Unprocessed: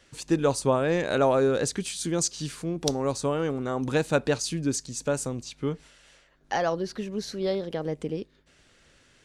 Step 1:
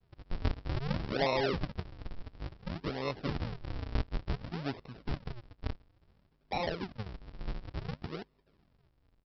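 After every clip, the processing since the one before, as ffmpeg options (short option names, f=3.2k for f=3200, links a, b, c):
-af "equalizer=f=310:t=o:w=0.43:g=-5.5,aresample=11025,acrusher=samples=35:mix=1:aa=0.000001:lfo=1:lforange=56:lforate=0.57,aresample=44100,volume=-7.5dB"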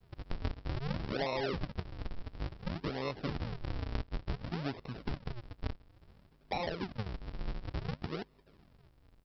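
-af "acompressor=threshold=-42dB:ratio=3,volume=6.5dB"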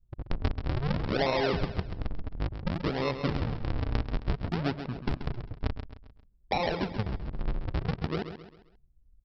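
-filter_complex "[0:a]anlmdn=0.1,asplit=2[a][b];[b]aecho=0:1:133|266|399|532:0.335|0.137|0.0563|0.0231[c];[a][c]amix=inputs=2:normalize=0,volume=7dB"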